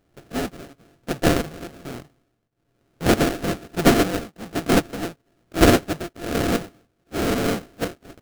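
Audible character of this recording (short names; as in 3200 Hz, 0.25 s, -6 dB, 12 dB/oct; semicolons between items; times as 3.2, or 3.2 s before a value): a buzz of ramps at a fixed pitch in blocks of 64 samples; tremolo triangle 1.1 Hz, depth 95%; aliases and images of a low sample rate 1000 Hz, jitter 20%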